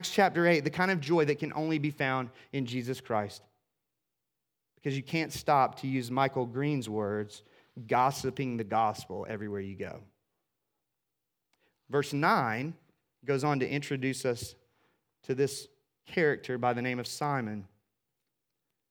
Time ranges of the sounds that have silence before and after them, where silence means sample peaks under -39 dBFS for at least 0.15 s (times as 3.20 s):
2.54–3.37 s
4.86–7.37 s
7.77–9.97 s
11.92–12.72 s
13.28–14.50 s
15.29–15.63 s
16.12–17.61 s